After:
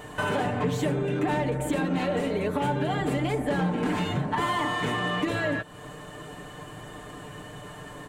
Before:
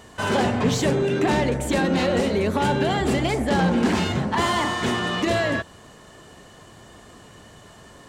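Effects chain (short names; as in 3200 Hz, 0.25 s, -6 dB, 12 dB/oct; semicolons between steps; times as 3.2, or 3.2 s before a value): bell 5300 Hz -11 dB 0.97 oct; comb 6.7 ms, depth 68%; compressor 2.5:1, threshold -33 dBFS, peak gain reduction 12.5 dB; gain +4 dB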